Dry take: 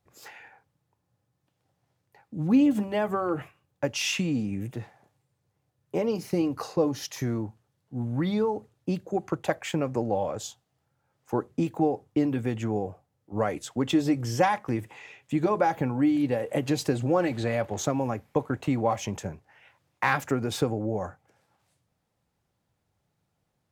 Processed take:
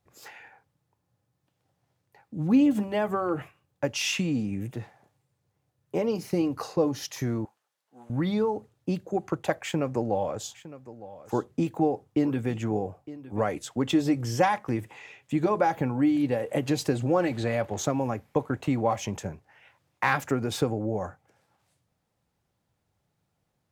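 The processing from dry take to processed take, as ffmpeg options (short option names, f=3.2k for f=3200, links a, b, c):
-filter_complex "[0:a]asettb=1/sr,asplit=3[a][b][c];[a]atrim=end=7.454[d];[b]atrim=start=7.45:end=8.1,asetpts=PTS-STARTPTS,afade=t=in:d=0.004:c=qsin,afade=t=out:st=0.646:d=0.004:c=qsin,highpass=780[e];[c]atrim=start=8.096[f];[d][e]acrossfade=d=0.004:c1=hsin:c2=qsin[g];[g][f]acrossfade=d=0.004:c1=qsin:c2=hsin,asettb=1/sr,asplit=3[h][i][j];[h]atrim=end=9.634[k];[i]atrim=start=9.63:end=13.41,asetpts=PTS-STARTPTS,afade=t=in:d=0.004:c=qsin,afade=t=out:st=3.776:d=0.004:c=qsin,aecho=1:1:910:0.15,atrim=end_sample=166698[l];[j]atrim=start=13.406[m];[k][l]acrossfade=d=0.004:c1=hsin:c2=qsin[n];[n][m]acrossfade=d=0.004:c1=qsin:c2=hsin"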